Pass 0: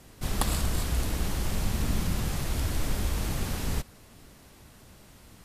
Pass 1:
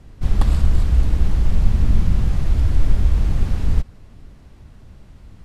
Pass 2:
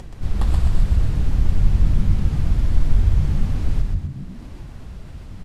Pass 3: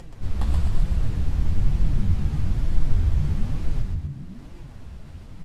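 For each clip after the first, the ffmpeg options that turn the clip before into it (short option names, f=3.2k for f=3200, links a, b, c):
-af "aemphasis=mode=reproduction:type=bsi"
-filter_complex "[0:a]acompressor=mode=upward:threshold=-22dB:ratio=2.5,flanger=delay=5.4:depth=10:regen=-44:speed=1.1:shape=sinusoidal,asplit=2[a][b];[b]asplit=7[c][d][e][f][g][h][i];[c]adelay=126,afreqshift=-51,volume=-3.5dB[j];[d]adelay=252,afreqshift=-102,volume=-9.5dB[k];[e]adelay=378,afreqshift=-153,volume=-15.5dB[l];[f]adelay=504,afreqshift=-204,volume=-21.6dB[m];[g]adelay=630,afreqshift=-255,volume=-27.6dB[n];[h]adelay=756,afreqshift=-306,volume=-33.6dB[o];[i]adelay=882,afreqshift=-357,volume=-39.6dB[p];[j][k][l][m][n][o][p]amix=inputs=7:normalize=0[q];[a][q]amix=inputs=2:normalize=0"
-af "flanger=delay=5.8:depth=8.4:regen=45:speed=1.1:shape=sinusoidal"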